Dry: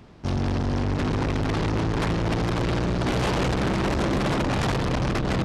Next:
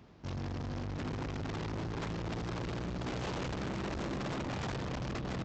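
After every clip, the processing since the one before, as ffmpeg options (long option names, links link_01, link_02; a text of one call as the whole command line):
ffmpeg -i in.wav -af "highpass=41,aresample=16000,asoftclip=type=tanh:threshold=-25dB,aresample=44100,volume=-8.5dB" out.wav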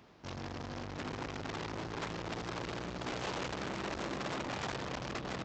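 ffmpeg -i in.wav -af "lowshelf=frequency=260:gain=-11.5,volume=2.5dB" out.wav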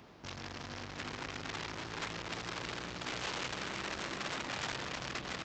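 ffmpeg -i in.wav -filter_complex "[0:a]acrossover=split=1300[link_01][link_02];[link_01]alimiter=level_in=17.5dB:limit=-24dB:level=0:latency=1:release=138,volume=-17.5dB[link_03];[link_03][link_02]amix=inputs=2:normalize=0,aecho=1:1:328:0.266,volume=3.5dB" out.wav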